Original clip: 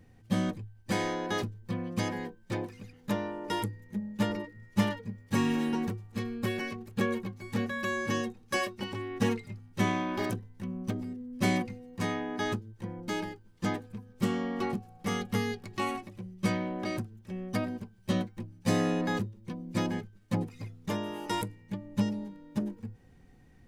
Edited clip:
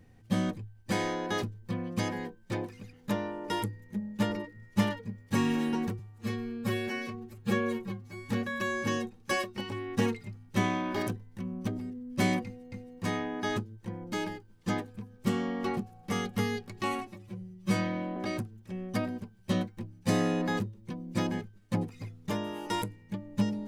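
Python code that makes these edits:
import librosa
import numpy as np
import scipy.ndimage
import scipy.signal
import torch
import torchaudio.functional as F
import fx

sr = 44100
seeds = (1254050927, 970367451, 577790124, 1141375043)

y = fx.edit(x, sr, fx.stretch_span(start_s=5.99, length_s=1.54, factor=1.5),
    fx.repeat(start_s=11.68, length_s=0.27, count=2),
    fx.stretch_span(start_s=16.03, length_s=0.73, factor=1.5), tone=tone)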